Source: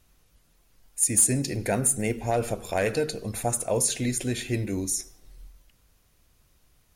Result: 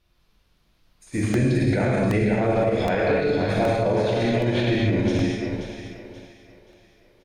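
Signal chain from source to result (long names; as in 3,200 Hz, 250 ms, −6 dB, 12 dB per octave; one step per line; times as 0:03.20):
treble cut that deepens with the level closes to 2,500 Hz, closed at −24 dBFS
high shelf with overshoot 5,900 Hz −8 dB, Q 1.5
double-tracking delay 36 ms −11 dB
echo with a time of its own for lows and highs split 420 Hz, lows 308 ms, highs 508 ms, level −7 dB
wrong playback speed 25 fps video run at 24 fps
parametric band 9,200 Hz −3 dB 0.77 octaves
reverb whose tail is shaped and stops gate 280 ms flat, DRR −4.5 dB
brickwall limiter −18 dBFS, peak gain reduction 9.5 dB
regular buffer underruns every 0.77 s, samples 64, repeat, from 0:00.57
expander for the loud parts 1.5 to 1, over −46 dBFS
level +6 dB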